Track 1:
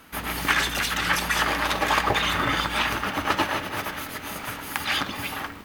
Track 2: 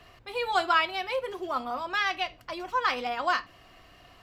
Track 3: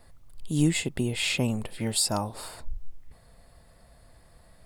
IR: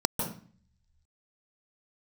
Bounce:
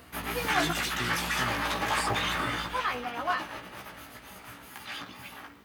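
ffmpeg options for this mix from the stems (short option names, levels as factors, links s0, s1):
-filter_complex "[0:a]asoftclip=type=tanh:threshold=0.158,volume=0.841,afade=t=out:st=2.38:d=0.5:silence=0.375837[s0];[1:a]lowpass=3400,volume=0.891,asplit=3[s1][s2][s3];[s1]atrim=end=0.71,asetpts=PTS-STARTPTS,afade=t=out:st=0.706:d=0.004:c=hsin[s4];[s2]atrim=start=0.71:end=2.66,asetpts=PTS-STARTPTS,volume=0[s5];[s3]atrim=start=2.66,asetpts=PTS-STARTPTS,afade=t=in:d=0.004:c=hsin[s6];[s4][s5][s6]concat=n=3:v=0:a=1[s7];[2:a]acompressor=mode=upward:threshold=0.0355:ratio=2.5,volume=0.335[s8];[s0][s7][s8]amix=inputs=3:normalize=0,highpass=62,flanger=delay=15.5:depth=2:speed=2.1"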